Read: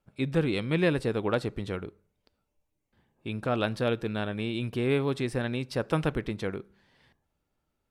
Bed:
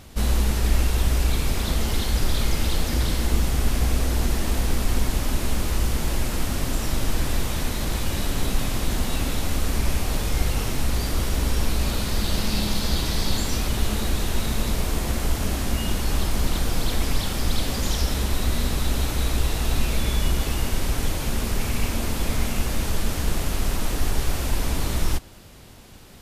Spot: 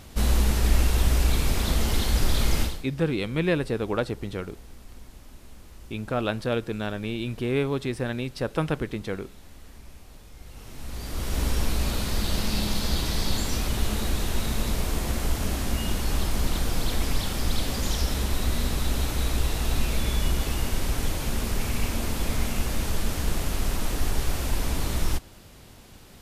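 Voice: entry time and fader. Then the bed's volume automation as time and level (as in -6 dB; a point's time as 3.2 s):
2.65 s, +1.0 dB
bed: 2.62 s -0.5 dB
2.88 s -23.5 dB
10.38 s -23.5 dB
11.4 s -2.5 dB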